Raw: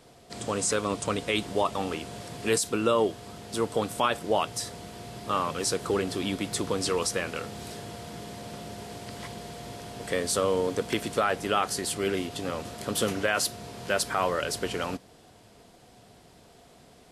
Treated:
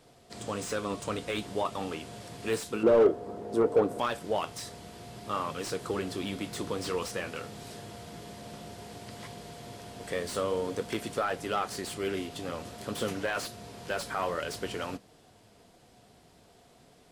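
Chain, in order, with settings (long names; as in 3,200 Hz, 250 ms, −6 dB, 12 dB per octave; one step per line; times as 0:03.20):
0:02.83–0:03.99: drawn EQ curve 130 Hz 0 dB, 430 Hz +14 dB, 3,100 Hz −10 dB
soft clipping −10.5 dBFS, distortion −13 dB
flanger 0.53 Hz, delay 6.3 ms, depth 8.1 ms, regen −67%
slew-rate limiting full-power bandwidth 84 Hz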